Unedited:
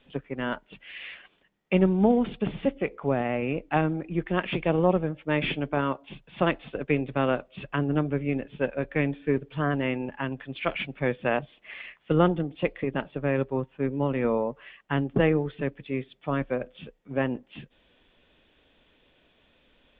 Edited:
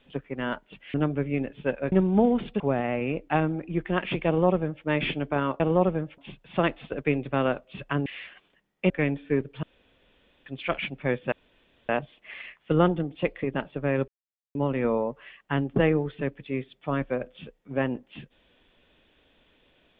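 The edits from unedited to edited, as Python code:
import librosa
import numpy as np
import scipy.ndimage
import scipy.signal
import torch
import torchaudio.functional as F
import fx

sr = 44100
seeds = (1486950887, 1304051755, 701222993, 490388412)

y = fx.edit(x, sr, fx.swap(start_s=0.94, length_s=0.84, other_s=7.89, other_length_s=0.98),
    fx.cut(start_s=2.46, length_s=0.55),
    fx.duplicate(start_s=4.68, length_s=0.58, to_s=6.01),
    fx.room_tone_fill(start_s=9.6, length_s=0.83),
    fx.insert_room_tone(at_s=11.29, length_s=0.57),
    fx.silence(start_s=13.48, length_s=0.47), tone=tone)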